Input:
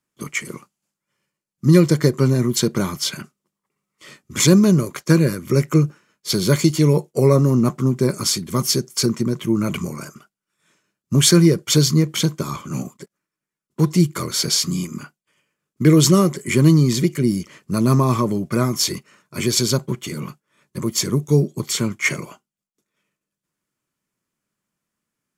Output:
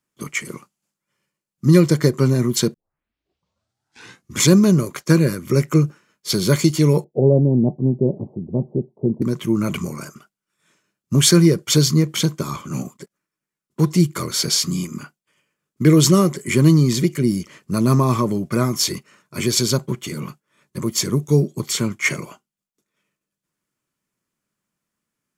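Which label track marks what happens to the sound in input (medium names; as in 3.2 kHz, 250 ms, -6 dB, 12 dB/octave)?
2.740000	2.740000	tape start 1.63 s
7.040000	9.220000	steep low-pass 830 Hz 72 dB/octave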